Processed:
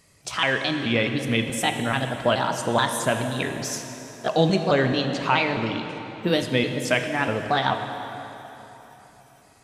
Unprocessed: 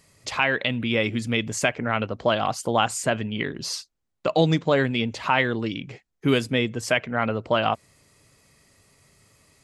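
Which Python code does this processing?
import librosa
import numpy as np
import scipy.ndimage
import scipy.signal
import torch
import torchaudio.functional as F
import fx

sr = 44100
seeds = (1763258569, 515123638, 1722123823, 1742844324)

y = fx.pitch_trill(x, sr, semitones=3.5, every_ms=214)
y = fx.rev_plate(y, sr, seeds[0], rt60_s=3.7, hf_ratio=0.75, predelay_ms=0, drr_db=5.5)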